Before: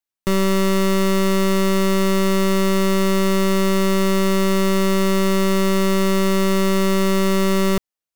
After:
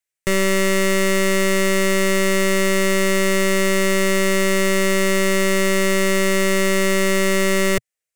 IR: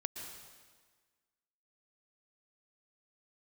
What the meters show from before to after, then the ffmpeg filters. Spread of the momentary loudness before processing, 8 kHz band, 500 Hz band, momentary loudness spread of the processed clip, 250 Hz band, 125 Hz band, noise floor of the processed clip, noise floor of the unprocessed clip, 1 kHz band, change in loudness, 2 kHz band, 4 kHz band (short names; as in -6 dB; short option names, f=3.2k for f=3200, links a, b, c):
0 LU, +6.0 dB, +1.0 dB, 0 LU, -3.5 dB, n/a, under -85 dBFS, under -85 dBFS, -2.5 dB, +0.5 dB, +7.5 dB, +2.0 dB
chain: -af "equalizer=f=125:t=o:w=1:g=4,equalizer=f=250:t=o:w=1:g=-10,equalizer=f=500:t=o:w=1:g=7,equalizer=f=1k:t=o:w=1:g=-8,equalizer=f=2k:t=o:w=1:g=10,equalizer=f=4k:t=o:w=1:g=-3,equalizer=f=8k:t=o:w=1:g=8"